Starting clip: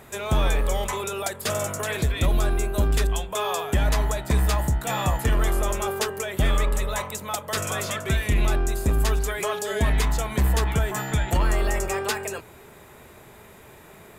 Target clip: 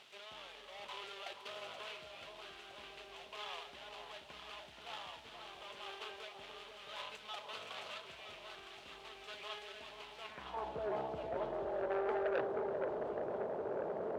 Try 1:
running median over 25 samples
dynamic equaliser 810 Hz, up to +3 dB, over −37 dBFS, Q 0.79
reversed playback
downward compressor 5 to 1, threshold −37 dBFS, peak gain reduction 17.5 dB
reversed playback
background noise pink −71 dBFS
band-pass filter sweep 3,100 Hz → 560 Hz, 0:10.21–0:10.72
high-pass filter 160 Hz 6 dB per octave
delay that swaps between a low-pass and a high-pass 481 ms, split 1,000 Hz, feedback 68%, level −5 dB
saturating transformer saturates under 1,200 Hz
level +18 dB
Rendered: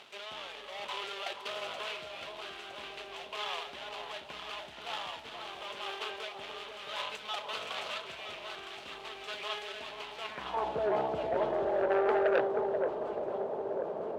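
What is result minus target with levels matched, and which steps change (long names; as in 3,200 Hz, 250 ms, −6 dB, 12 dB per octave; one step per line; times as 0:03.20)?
downward compressor: peak gain reduction −9 dB; 125 Hz band −3.5 dB
change: downward compressor 5 to 1, threshold −48 dBFS, peak gain reduction 26.5 dB
change: high-pass filter 60 Hz 6 dB per octave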